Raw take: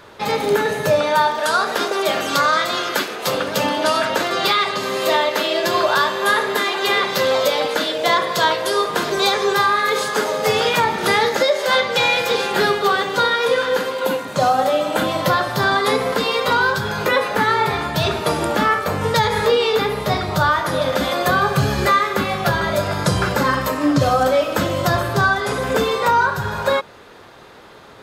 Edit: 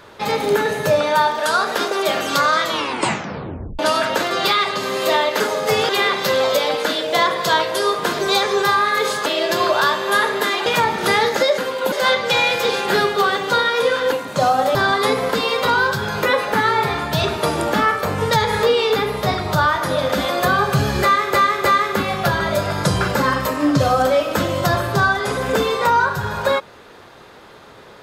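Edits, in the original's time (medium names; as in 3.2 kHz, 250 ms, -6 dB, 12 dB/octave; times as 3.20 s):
2.62 s: tape stop 1.17 s
5.40–6.80 s: swap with 10.17–10.66 s
13.78–14.12 s: move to 11.58 s
14.75–15.58 s: delete
21.86–22.17 s: loop, 3 plays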